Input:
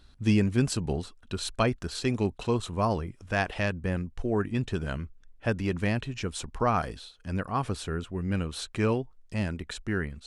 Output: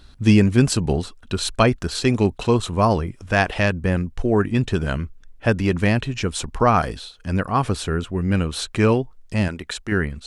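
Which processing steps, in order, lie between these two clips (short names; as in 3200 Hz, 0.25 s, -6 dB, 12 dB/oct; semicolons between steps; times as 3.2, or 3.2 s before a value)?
9.48–9.92 low shelf 260 Hz -9.5 dB; gain +9 dB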